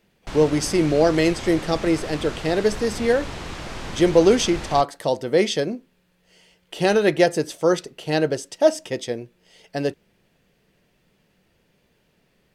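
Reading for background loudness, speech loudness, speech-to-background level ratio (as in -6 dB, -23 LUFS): -34.0 LUFS, -21.5 LUFS, 12.5 dB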